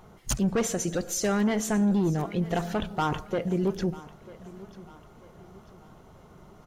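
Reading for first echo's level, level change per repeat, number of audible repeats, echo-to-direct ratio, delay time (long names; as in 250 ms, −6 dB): −19.0 dB, −7.5 dB, 3, −18.0 dB, 944 ms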